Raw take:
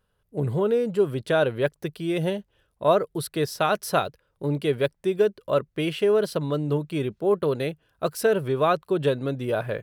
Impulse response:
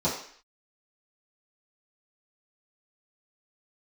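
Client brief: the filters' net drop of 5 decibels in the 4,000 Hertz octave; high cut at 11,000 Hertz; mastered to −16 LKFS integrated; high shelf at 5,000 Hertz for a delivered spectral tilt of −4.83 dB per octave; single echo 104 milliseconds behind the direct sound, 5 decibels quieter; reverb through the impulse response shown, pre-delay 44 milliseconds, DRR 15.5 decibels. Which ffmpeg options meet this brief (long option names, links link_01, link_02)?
-filter_complex "[0:a]lowpass=11000,equalizer=frequency=4000:width_type=o:gain=-5,highshelf=frequency=5000:gain=-3.5,aecho=1:1:104:0.562,asplit=2[link_01][link_02];[1:a]atrim=start_sample=2205,adelay=44[link_03];[link_02][link_03]afir=irnorm=-1:irlink=0,volume=-26.5dB[link_04];[link_01][link_04]amix=inputs=2:normalize=0,volume=8dB"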